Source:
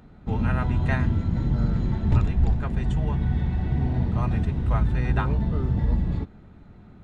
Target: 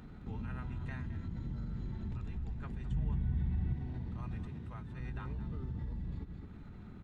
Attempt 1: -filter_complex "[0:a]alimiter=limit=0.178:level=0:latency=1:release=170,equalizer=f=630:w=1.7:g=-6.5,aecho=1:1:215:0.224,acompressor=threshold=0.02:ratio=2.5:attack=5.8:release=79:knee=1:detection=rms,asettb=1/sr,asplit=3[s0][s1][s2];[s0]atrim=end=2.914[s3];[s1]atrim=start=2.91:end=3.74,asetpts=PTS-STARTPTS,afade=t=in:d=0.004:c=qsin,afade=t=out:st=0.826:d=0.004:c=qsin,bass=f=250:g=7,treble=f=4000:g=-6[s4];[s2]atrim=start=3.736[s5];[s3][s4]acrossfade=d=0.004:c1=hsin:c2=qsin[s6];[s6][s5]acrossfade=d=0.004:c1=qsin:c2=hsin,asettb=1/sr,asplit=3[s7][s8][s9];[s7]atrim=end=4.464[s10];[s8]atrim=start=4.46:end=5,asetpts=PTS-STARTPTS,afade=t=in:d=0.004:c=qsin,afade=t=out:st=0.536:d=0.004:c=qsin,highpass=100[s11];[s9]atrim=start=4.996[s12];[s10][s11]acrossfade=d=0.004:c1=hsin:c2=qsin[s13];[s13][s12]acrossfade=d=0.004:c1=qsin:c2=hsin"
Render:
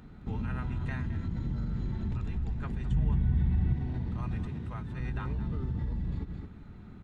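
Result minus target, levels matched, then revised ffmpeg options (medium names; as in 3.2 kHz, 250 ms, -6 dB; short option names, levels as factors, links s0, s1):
compression: peak gain reduction -7 dB
-filter_complex "[0:a]alimiter=limit=0.178:level=0:latency=1:release=170,equalizer=f=630:w=1.7:g=-6.5,aecho=1:1:215:0.224,acompressor=threshold=0.00531:ratio=2.5:attack=5.8:release=79:knee=1:detection=rms,asettb=1/sr,asplit=3[s0][s1][s2];[s0]atrim=end=2.914[s3];[s1]atrim=start=2.91:end=3.74,asetpts=PTS-STARTPTS,afade=t=in:d=0.004:c=qsin,afade=t=out:st=0.826:d=0.004:c=qsin,bass=f=250:g=7,treble=f=4000:g=-6[s4];[s2]atrim=start=3.736[s5];[s3][s4]acrossfade=d=0.004:c1=hsin:c2=qsin[s6];[s6][s5]acrossfade=d=0.004:c1=qsin:c2=hsin,asettb=1/sr,asplit=3[s7][s8][s9];[s7]atrim=end=4.464[s10];[s8]atrim=start=4.46:end=5,asetpts=PTS-STARTPTS,afade=t=in:d=0.004:c=qsin,afade=t=out:st=0.536:d=0.004:c=qsin,highpass=100[s11];[s9]atrim=start=4.996[s12];[s10][s11]acrossfade=d=0.004:c1=hsin:c2=qsin[s13];[s13][s12]acrossfade=d=0.004:c1=qsin:c2=hsin"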